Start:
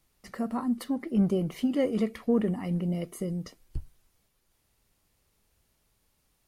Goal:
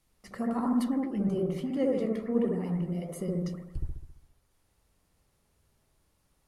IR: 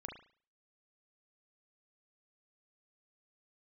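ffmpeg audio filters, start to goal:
-filter_complex "[0:a]asettb=1/sr,asplit=3[link_01][link_02][link_03];[link_01]atrim=end=1.004[link_04];[link_02]atrim=start=1:end=3.09,asetpts=PTS-STARTPTS,afade=type=in:duration=0.004:curve=qsin,afade=type=out:start_time=2.086:duration=0.004:curve=qsin,flanger=delay=6.2:depth=9.9:regen=56:speed=1.3:shape=triangular[link_05];[link_03]atrim=start=3.086[link_06];[link_04][link_05]acrossfade=duration=0.004:curve1=hsin:curve2=qsin[link_07];[link_07][link_06]acrossfade=duration=0.004:curve1=qsin:curve2=hsin[link_08];[1:a]atrim=start_sample=2205,asetrate=22932,aresample=44100[link_09];[link_08][link_09]afir=irnorm=-1:irlink=0"

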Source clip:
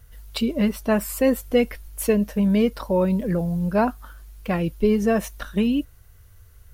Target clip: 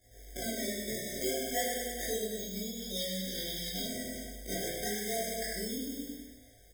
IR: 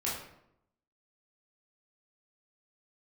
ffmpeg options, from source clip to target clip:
-filter_complex "[0:a]acrusher=samples=31:mix=1:aa=0.000001:lfo=1:lforange=49.6:lforate=0.3,aecho=1:1:100|200|300|400|500|600|700:0.562|0.298|0.158|0.0837|0.0444|0.0235|0.0125,flanger=delay=19.5:depth=3.6:speed=0.62,acompressor=threshold=-30dB:ratio=12,asettb=1/sr,asplit=3[link_01][link_02][link_03];[link_01]atrim=end=2.394[link_04];[link_02]atrim=start=2.39:end=3.86,asetpts=PTS-STARTPTS,afade=type=in:duration=0.004:curve=qsin,afade=type=out:start_time=1.466:duration=0.004:curve=qsin,equalizer=frequency=500:width_type=o:width=1:gain=-7,equalizer=frequency=1000:width_type=o:width=1:gain=-5,equalizer=frequency=2000:width_type=o:width=1:gain=-7,equalizer=frequency=4000:width_type=o:width=1:gain=10,equalizer=frequency=8000:width_type=o:width=1:gain=-7[link_05];[link_03]atrim=start=3.856[link_06];[link_04][link_05]acrossfade=duration=0.004:curve1=hsin:curve2=qsin[link_07];[link_07][link_06]acrossfade=duration=0.004:curve1=qsin:curve2=hsin[link_08];[1:a]atrim=start_sample=2205,afade=type=out:start_time=0.15:duration=0.01,atrim=end_sample=7056[link_09];[link_08][link_09]afir=irnorm=-1:irlink=0,acrusher=bits=8:mode=log:mix=0:aa=0.000001,bass=frequency=250:gain=-13,treble=frequency=4000:gain=14,afftfilt=real='re*eq(mod(floor(b*sr/1024/770),2),0)':imag='im*eq(mod(floor(b*sr/1024/770),2),0)':win_size=1024:overlap=0.75,volume=-3.5dB"

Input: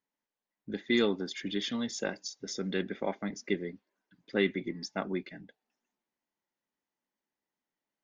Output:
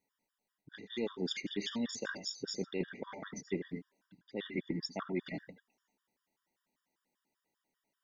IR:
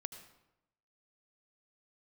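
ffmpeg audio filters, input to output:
-filter_complex "[0:a]areverse,acompressor=threshold=-39dB:ratio=8,areverse[link_01];[1:a]atrim=start_sample=2205,atrim=end_sample=4410[link_02];[link_01][link_02]afir=irnorm=-1:irlink=0,afftfilt=real='re*gt(sin(2*PI*5.1*pts/sr)*(1-2*mod(floor(b*sr/1024/950),2)),0)':imag='im*gt(sin(2*PI*5.1*pts/sr)*(1-2*mod(floor(b*sr/1024/950),2)),0)':win_size=1024:overlap=0.75,volume=10.5dB"

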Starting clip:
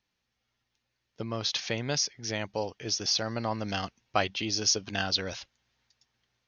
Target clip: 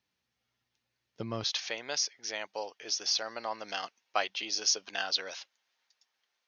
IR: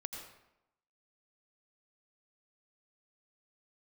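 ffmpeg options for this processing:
-af "asetnsamples=nb_out_samples=441:pad=0,asendcmd='1.44 highpass f 570',highpass=78,volume=-2dB"

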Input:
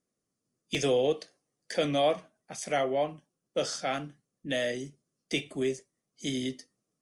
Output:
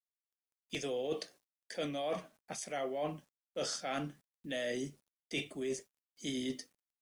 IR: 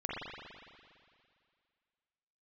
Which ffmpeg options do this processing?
-af "equalizer=frequency=130:width_type=o:width=0.23:gain=-7.5,areverse,acompressor=threshold=-36dB:ratio=10,areverse,acrusher=bits=11:mix=0:aa=0.000001,volume=2dB"

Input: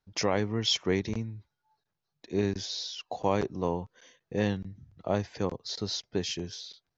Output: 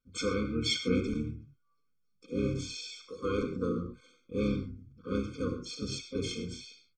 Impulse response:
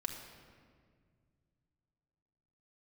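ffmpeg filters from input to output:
-filter_complex "[0:a]asplit=3[link_01][link_02][link_03];[link_02]asetrate=29433,aresample=44100,atempo=1.49831,volume=-6dB[link_04];[link_03]asetrate=58866,aresample=44100,atempo=0.749154,volume=-5dB[link_05];[link_01][link_04][link_05]amix=inputs=3:normalize=0[link_06];[1:a]atrim=start_sample=2205,atrim=end_sample=6615[link_07];[link_06][link_07]afir=irnorm=-1:irlink=0,afftfilt=real='re*eq(mod(floor(b*sr/1024/520),2),0)':imag='im*eq(mod(floor(b*sr/1024/520),2),0)':win_size=1024:overlap=0.75,volume=-3.5dB"

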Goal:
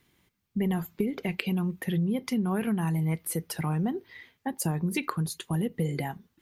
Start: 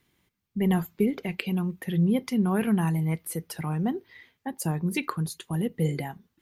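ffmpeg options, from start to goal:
ffmpeg -i in.wav -af "acompressor=threshold=-27dB:ratio=6,volume=2.5dB" out.wav

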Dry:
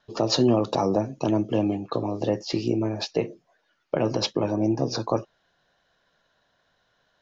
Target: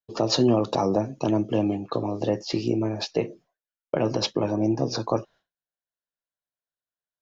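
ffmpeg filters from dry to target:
ffmpeg -i in.wav -af "agate=range=-33dB:threshold=-46dB:ratio=3:detection=peak" out.wav

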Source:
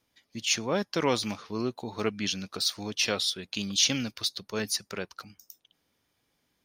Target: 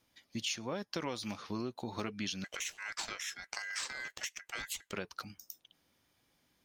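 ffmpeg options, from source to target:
ffmpeg -i in.wav -filter_complex "[0:a]bandreject=frequency=440:width=12,acompressor=threshold=-35dB:ratio=10,asettb=1/sr,asplit=3[link_01][link_02][link_03];[link_01]atrim=end=2.444[link_04];[link_02]atrim=start=2.44:end=4.93,asetpts=PTS-STARTPTS,afade=type=in:duration=0.004:curve=qsin,afade=type=out:start_time=2.486:duration=0.004:curve=qsin,aeval=exprs='val(0)*sin(2*PI*1800*n/s)':channel_layout=same[link_05];[link_03]atrim=start=4.926[link_06];[link_04][link_05]acrossfade=duration=0.004:curve1=hsin:curve2=qsin[link_07];[link_07][link_06]acrossfade=duration=0.004:curve1=qsin:curve2=hsin,volume=1dB" out.wav

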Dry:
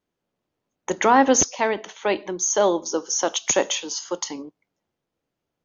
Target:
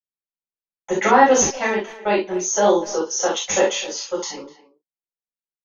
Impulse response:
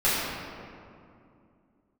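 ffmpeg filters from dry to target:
-filter_complex "[0:a]agate=range=-33dB:threshold=-30dB:ratio=3:detection=peak,asplit=2[link_01][link_02];[link_02]adelay=250,highpass=300,lowpass=3400,asoftclip=type=hard:threshold=-15dB,volume=-16dB[link_03];[link_01][link_03]amix=inputs=2:normalize=0[link_04];[1:a]atrim=start_sample=2205,atrim=end_sample=3528[link_05];[link_04][link_05]afir=irnorm=-1:irlink=0,volume=-9.5dB"

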